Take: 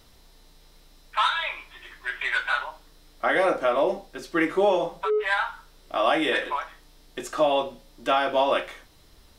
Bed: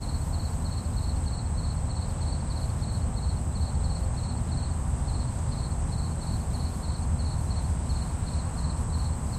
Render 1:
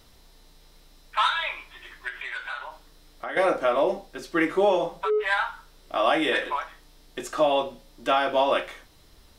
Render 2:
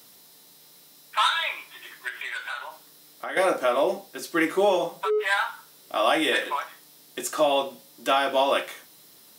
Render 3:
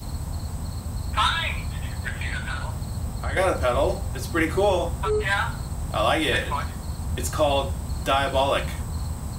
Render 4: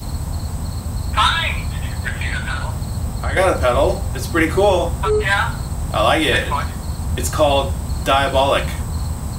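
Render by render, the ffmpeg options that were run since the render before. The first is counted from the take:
-filter_complex "[0:a]asettb=1/sr,asplit=3[a][b][c];[a]atrim=end=2.084[d];[b]atrim=start=2.08:end=3.37,asetpts=PTS-STARTPTS,afade=t=in:d=0.004:c=qsin,afade=t=out:st=1.286:d=0.004:c=qsin,acompressor=threshold=-34dB:ratio=2.5:attack=3.2:release=140:knee=1:detection=peak[e];[c]atrim=start=3.366[f];[d][e]acrossfade=d=0.004:c1=hsin:c2=qsin[g];[g][f]acrossfade=d=0.004:c1=qsin:c2=hsin"
-af "highpass=f=150:w=0.5412,highpass=f=150:w=1.3066,aemphasis=mode=production:type=50fm"
-filter_complex "[1:a]volume=-1.5dB[a];[0:a][a]amix=inputs=2:normalize=0"
-af "volume=6.5dB,alimiter=limit=-3dB:level=0:latency=1"

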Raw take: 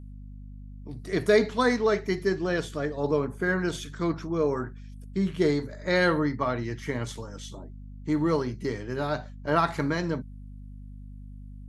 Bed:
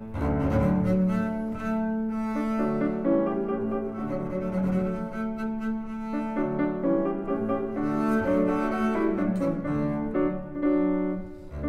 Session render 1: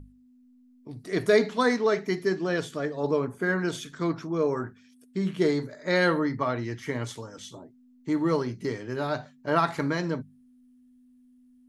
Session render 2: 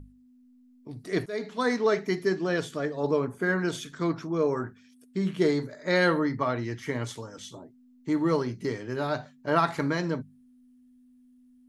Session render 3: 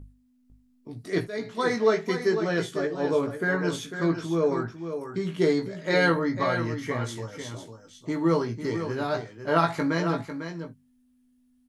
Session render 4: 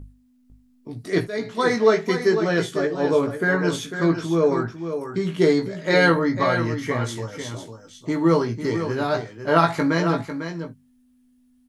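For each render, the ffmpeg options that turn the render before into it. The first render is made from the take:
-af "bandreject=f=50:t=h:w=6,bandreject=f=100:t=h:w=6,bandreject=f=150:t=h:w=6,bandreject=f=200:t=h:w=6"
-filter_complex "[0:a]asplit=2[a][b];[a]atrim=end=1.26,asetpts=PTS-STARTPTS,afade=t=out:st=1.256:d=0.004:c=hsin:silence=0.0794328[c];[b]atrim=start=1.26,asetpts=PTS-STARTPTS,afade=t=in:d=0.59:silence=0.0794328[d];[c][d]concat=n=2:v=0:a=1"
-filter_complex "[0:a]asplit=2[a][b];[b]adelay=18,volume=-5dB[c];[a][c]amix=inputs=2:normalize=0,aecho=1:1:499:0.355"
-af "volume=5dB"

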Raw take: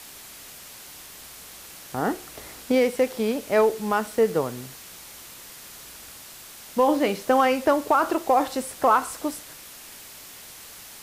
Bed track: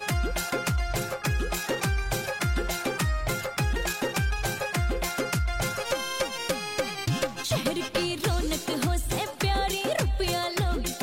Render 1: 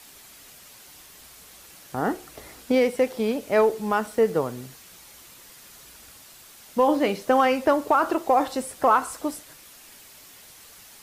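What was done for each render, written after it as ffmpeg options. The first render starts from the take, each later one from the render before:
-af "afftdn=nr=6:nf=-44"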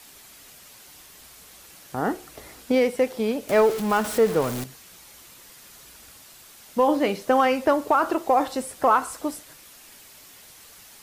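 -filter_complex "[0:a]asettb=1/sr,asplit=3[a][b][c];[a]atrim=end=3.494[d];[b]atrim=start=3.49:end=4.64,asetpts=PTS-STARTPTS,afade=t=in:d=0.004:c=qsin,afade=t=out:st=1.146:d=0.004:c=qsin,aeval=exprs='val(0)+0.5*0.0422*sgn(val(0))':c=same[e];[c]atrim=start=4.636[f];[d][e]acrossfade=d=0.004:c1=hsin:c2=qsin[g];[g][f]acrossfade=d=0.004:c1=qsin:c2=hsin"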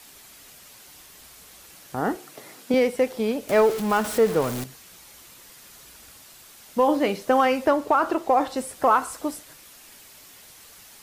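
-filter_complex "[0:a]asettb=1/sr,asplit=3[a][b][c];[a]atrim=end=2.164[d];[b]atrim=start=2.16:end=2.74,asetpts=PTS-STARTPTS,afade=t=in:d=0.004:c=qsin,afade=t=out:st=0.576:d=0.004:c=qsin,highpass=f=130:w=0.5412,highpass=f=130:w=1.3066[e];[c]atrim=start=2.736[f];[d][e]acrossfade=d=0.004:c1=hsin:c2=qsin[g];[g][f]acrossfade=d=0.004:c1=qsin:c2=hsin,asettb=1/sr,asplit=3[h][i][j];[h]atrim=end=7.694[k];[i]atrim=start=7.69:end=8.57,asetpts=PTS-STARTPTS,afade=t=in:d=0.004:c=qsin,afade=t=out:st=0.876:d=0.004:c=qsin,highshelf=f=7.7k:g=-6.5[l];[j]atrim=start=8.566[m];[k][l]acrossfade=d=0.004:c1=hsin:c2=qsin[n];[n][m]acrossfade=d=0.004:c1=qsin:c2=hsin"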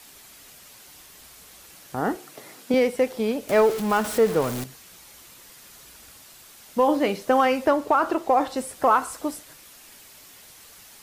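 -af anull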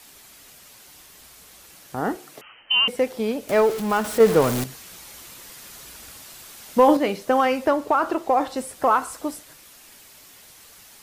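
-filter_complex "[0:a]asettb=1/sr,asplit=3[a][b][c];[a]atrim=end=2.414[d];[b]atrim=start=2.41:end=2.88,asetpts=PTS-STARTPTS,afade=t=in:d=0.004:c=qsin,afade=t=out:st=0.466:d=0.004:c=qsin,lowpass=f=2.8k:t=q:w=0.5098,lowpass=f=2.8k:t=q:w=0.6013,lowpass=f=2.8k:t=q:w=0.9,lowpass=f=2.8k:t=q:w=2.563,afreqshift=-3300[e];[c]atrim=start=2.876[f];[d][e]acrossfade=d=0.004:c1=hsin:c2=qsin[g];[g][f]acrossfade=d=0.004:c1=qsin:c2=hsin,asettb=1/sr,asplit=3[h][i][j];[h]atrim=end=4.204[k];[i]atrim=start=4.2:end=6.97,asetpts=PTS-STARTPTS,afade=t=in:d=0.004:c=qsin,afade=t=out:st=2.766:d=0.004:c=qsin,acontrast=36[l];[j]atrim=start=6.966[m];[k][l]acrossfade=d=0.004:c1=hsin:c2=qsin[n];[n][m]acrossfade=d=0.004:c1=qsin:c2=hsin"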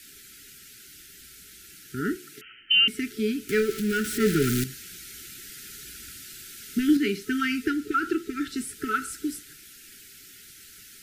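-af "afftfilt=real='re*(1-between(b*sr/4096,440,1300))':imag='im*(1-between(b*sr/4096,440,1300))':win_size=4096:overlap=0.75"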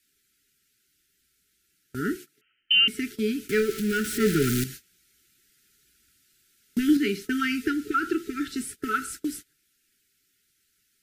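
-af "agate=range=-22dB:threshold=-38dB:ratio=16:detection=peak"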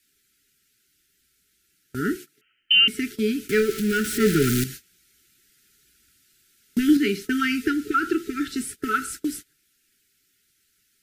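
-af "volume=3dB"

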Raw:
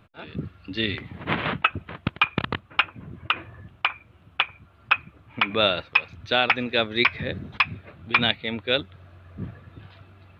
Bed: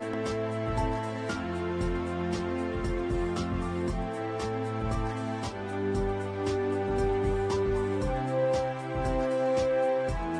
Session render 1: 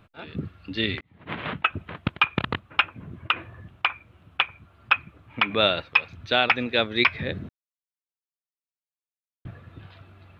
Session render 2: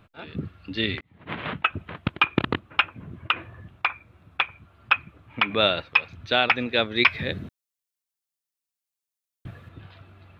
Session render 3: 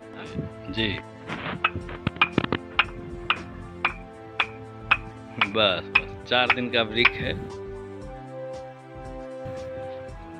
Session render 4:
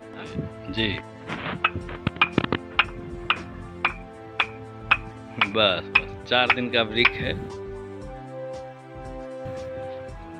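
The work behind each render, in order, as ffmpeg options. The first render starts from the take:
-filter_complex "[0:a]asplit=4[a][b][c][d];[a]atrim=end=1.01,asetpts=PTS-STARTPTS,afade=t=out:st=1.006:d=0.004:c=hsin[e];[b]atrim=start=1.01:end=7.49,asetpts=PTS-STARTPTS,afade=t=in:d=0.81,afade=t=out:st=6.476:d=0.004:c=hsin[f];[c]atrim=start=7.49:end=9.45,asetpts=PTS-STARTPTS,volume=0[g];[d]atrim=start=9.45,asetpts=PTS-STARTPTS,afade=t=in:d=0.004:c=hsin[h];[e][f][g][h]concat=n=4:v=0:a=1"
-filter_complex "[0:a]asettb=1/sr,asplit=3[a][b][c];[a]atrim=end=2.144[d];[b]atrim=start=2.14:end=2.7,asetpts=PTS-STARTPTS,afade=t=in:d=0.004:c=qsin,afade=t=out:st=0.556:d=0.004:c=qsin,equalizer=f=320:w=1.5:g=8.5[e];[c]atrim=start=2.696[f];[d][e]acrossfade=d=0.004:c1=hsin:c2=qsin[g];[g][f]acrossfade=d=0.004:c1=qsin:c2=hsin,asettb=1/sr,asplit=3[h][i][j];[h]atrim=end=3.784[k];[i]atrim=start=3.78:end=4.42,asetpts=PTS-STARTPTS,afade=t=in:d=0.004:c=qsin,afade=t=out:st=0.636:d=0.004:c=qsin,bandreject=f=3k:w=7.6[l];[j]atrim=start=4.416[m];[k][l]acrossfade=d=0.004:c1=hsin:c2=qsin[n];[n][m]acrossfade=d=0.004:c1=qsin:c2=hsin,asettb=1/sr,asplit=3[o][p][q];[o]atrim=end=7.054[r];[p]atrim=start=7.05:end=9.69,asetpts=PTS-STARTPTS,afade=t=in:d=0.004:c=qsin,afade=t=out:st=2.636:d=0.004:c=qsin,highshelf=f=3.5k:g=9[s];[q]atrim=start=9.686[t];[r][s]acrossfade=d=0.004:c1=hsin:c2=qsin[u];[u][t]acrossfade=d=0.004:c1=qsin:c2=hsin"
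-filter_complex "[1:a]volume=-9dB[a];[0:a][a]amix=inputs=2:normalize=0"
-af "volume=1dB,alimiter=limit=-3dB:level=0:latency=1"

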